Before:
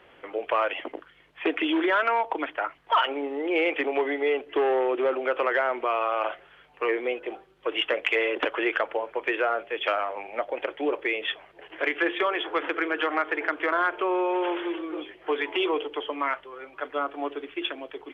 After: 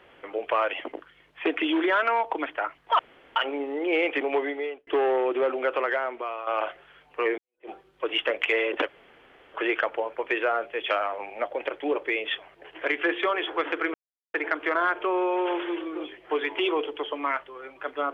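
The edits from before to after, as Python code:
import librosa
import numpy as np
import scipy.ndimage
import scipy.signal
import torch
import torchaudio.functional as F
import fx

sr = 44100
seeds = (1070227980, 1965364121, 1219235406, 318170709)

y = fx.edit(x, sr, fx.insert_room_tone(at_s=2.99, length_s=0.37),
    fx.fade_out_span(start_s=4.02, length_s=0.48),
    fx.fade_out_to(start_s=5.31, length_s=0.79, floor_db=-11.0),
    fx.fade_in_span(start_s=7.01, length_s=0.31, curve='exp'),
    fx.insert_room_tone(at_s=8.51, length_s=0.66),
    fx.silence(start_s=12.91, length_s=0.4), tone=tone)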